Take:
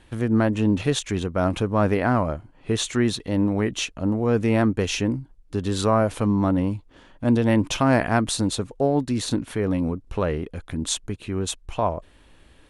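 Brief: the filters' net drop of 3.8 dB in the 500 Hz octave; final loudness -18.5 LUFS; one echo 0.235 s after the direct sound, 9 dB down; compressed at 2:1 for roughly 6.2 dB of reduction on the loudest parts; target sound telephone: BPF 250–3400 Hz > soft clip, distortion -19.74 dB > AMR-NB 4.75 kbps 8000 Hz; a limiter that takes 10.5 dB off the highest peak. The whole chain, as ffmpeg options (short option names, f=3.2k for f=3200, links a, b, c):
-af "equalizer=f=500:t=o:g=-4.5,acompressor=threshold=-27dB:ratio=2,alimiter=limit=-21.5dB:level=0:latency=1,highpass=250,lowpass=3.4k,aecho=1:1:235:0.355,asoftclip=threshold=-24dB,volume=19.5dB" -ar 8000 -c:a libopencore_amrnb -b:a 4750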